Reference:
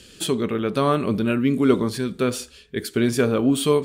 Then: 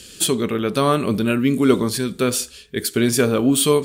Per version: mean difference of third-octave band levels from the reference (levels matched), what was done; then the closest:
2.5 dB: high-shelf EQ 4,700 Hz +10.5 dB
level +2 dB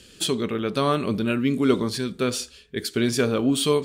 1.5 dB: dynamic equaliser 4,800 Hz, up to +7 dB, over −43 dBFS, Q 0.77
level −2.5 dB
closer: second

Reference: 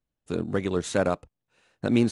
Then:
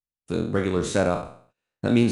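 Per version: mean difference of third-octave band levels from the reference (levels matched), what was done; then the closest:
3.0 dB: peak hold with a decay on every bin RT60 0.52 s
noise gate −58 dBFS, range −22 dB
low-shelf EQ 210 Hz +4 dB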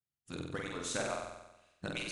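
9.0 dB: harmonic-percussive split with one part muted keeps percussive
parametric band 450 Hz −10 dB 2.6 octaves
flutter between parallel walls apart 8 metres, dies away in 0.97 s
level −4.5 dB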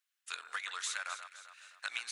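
19.0 dB: high-pass filter 1,400 Hz 24 dB per octave
downward compressor 5 to 1, threshold −44 dBFS, peak gain reduction 13 dB
delay that swaps between a low-pass and a high-pass 130 ms, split 1,800 Hz, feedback 67%, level −8 dB
level +7.5 dB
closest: first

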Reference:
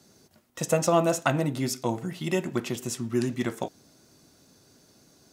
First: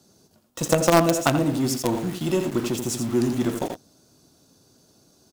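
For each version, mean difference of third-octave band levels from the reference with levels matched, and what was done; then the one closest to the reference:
4.5 dB: parametric band 2,000 Hz −9.5 dB 0.64 octaves
single-tap delay 84 ms −8 dB
dynamic equaliser 300 Hz, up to +5 dB, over −42 dBFS, Q 2.9
in parallel at −7.5 dB: log-companded quantiser 2 bits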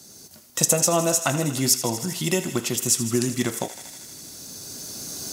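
8.0 dB: camcorder AGC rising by 7.9 dB per second
bass and treble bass +1 dB, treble +13 dB
feedback echo with a high-pass in the loop 79 ms, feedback 82%, high-pass 750 Hz, level −13 dB
in parallel at 0 dB: downward compressor, threshold −32 dBFS, peak gain reduction 17 dB
on the sum: level −2 dB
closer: first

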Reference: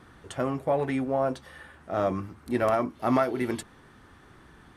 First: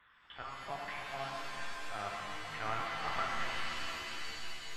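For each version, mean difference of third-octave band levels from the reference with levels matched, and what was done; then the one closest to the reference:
14.0 dB: one scale factor per block 7 bits
Bessel high-pass filter 1,200 Hz, order 6
linear-prediction vocoder at 8 kHz pitch kept
reverb with rising layers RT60 3.8 s, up +7 semitones, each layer −2 dB, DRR −1 dB
level −6.5 dB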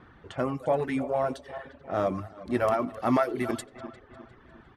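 3.0 dB: feedback delay that plays each chunk backwards 176 ms, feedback 65%, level −13 dB
low-pass that shuts in the quiet parts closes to 2,700 Hz, open at −25 dBFS
reverb reduction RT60 0.66 s
far-end echo of a speakerphone 90 ms, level −20 dB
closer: second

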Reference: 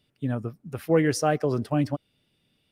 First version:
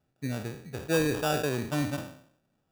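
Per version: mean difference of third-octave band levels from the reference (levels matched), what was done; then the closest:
11.5 dB: peak hold with a decay on every bin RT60 0.60 s
high-shelf EQ 3,800 Hz −11 dB
sample-rate reduction 2,100 Hz, jitter 0%
level −5.5 dB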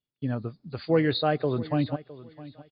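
3.5 dB: hearing-aid frequency compression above 3,300 Hz 4 to 1
on a send: repeating echo 661 ms, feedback 22%, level −18 dB
on the sum: noise gate with hold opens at −49 dBFS
level −1.5 dB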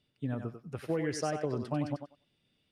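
5.0 dB: low-pass filter 8,200 Hz 12 dB per octave
downward compressor, threshold −23 dBFS, peak gain reduction 8 dB
feedback echo with a high-pass in the loop 95 ms, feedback 17%, high-pass 340 Hz, level −6 dB
level −5.5 dB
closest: second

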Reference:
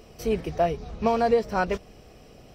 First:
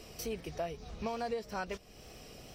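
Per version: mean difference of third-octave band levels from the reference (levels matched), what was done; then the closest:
8.0 dB: high-shelf EQ 2,300 Hz +10 dB
downward compressor 2 to 1, threshold −41 dBFS, peak gain reduction 14 dB
tape wow and flutter 24 cents
level −3 dB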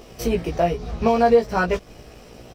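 2.0 dB: in parallel at +3 dB: downward compressor, threshold −33 dBFS, peak gain reduction 16 dB
on the sum: dead-zone distortion −49.5 dBFS
double-tracking delay 17 ms −2.5 dB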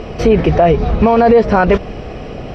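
6.0 dB: low-pass filter 2,700 Hz 12 dB per octave
downward compressor 2 to 1, threshold −25 dBFS, peak gain reduction 5.5 dB
boost into a limiter +24 dB
level −1 dB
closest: second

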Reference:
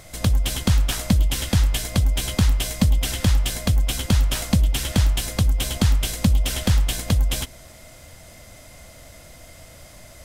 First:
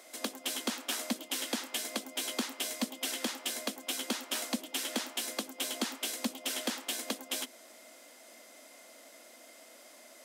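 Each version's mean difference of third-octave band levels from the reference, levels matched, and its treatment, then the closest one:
8.5 dB: Butterworth high-pass 230 Hz 72 dB per octave
level −7.5 dB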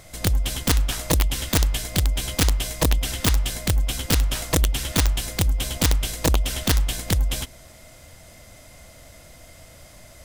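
2.0 dB: wrap-around overflow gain 10.5 dB
level −2 dB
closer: second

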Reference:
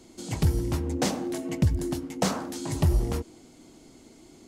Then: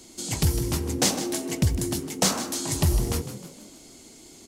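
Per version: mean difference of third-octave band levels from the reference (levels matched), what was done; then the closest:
5.0 dB: high-shelf EQ 2,800 Hz +12 dB
echo with shifted repeats 155 ms, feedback 48%, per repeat +43 Hz, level −12 dB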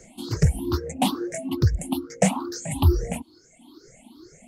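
8.5 dB: rippled gain that drifts along the octave scale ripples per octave 0.54, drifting +2.3 Hz, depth 20 dB
reverb reduction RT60 1.2 s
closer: first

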